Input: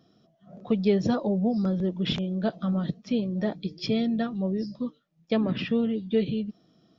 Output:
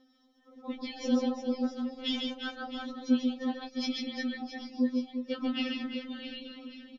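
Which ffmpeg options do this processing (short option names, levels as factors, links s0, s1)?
-af "aecho=1:1:140|350|665|1138|1846:0.631|0.398|0.251|0.158|0.1,afftfilt=real='re*3.46*eq(mod(b,12),0)':imag='im*3.46*eq(mod(b,12),0)':win_size=2048:overlap=0.75"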